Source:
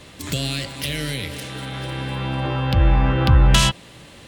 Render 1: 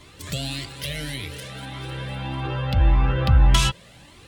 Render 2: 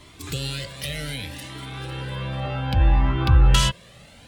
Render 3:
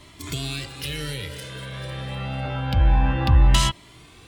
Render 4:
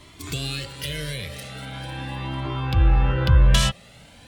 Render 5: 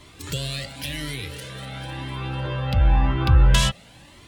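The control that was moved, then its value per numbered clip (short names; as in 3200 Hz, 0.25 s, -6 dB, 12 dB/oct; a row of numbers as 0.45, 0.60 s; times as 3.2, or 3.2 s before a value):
cascading flanger, rate: 1.7, 0.65, 0.27, 0.42, 0.96 Hz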